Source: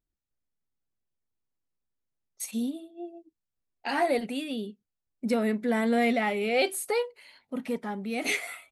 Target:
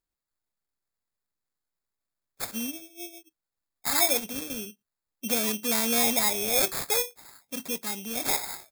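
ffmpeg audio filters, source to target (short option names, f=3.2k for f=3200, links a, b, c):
-af "acrusher=samples=15:mix=1:aa=0.000001,crystalizer=i=6:c=0,volume=-5.5dB"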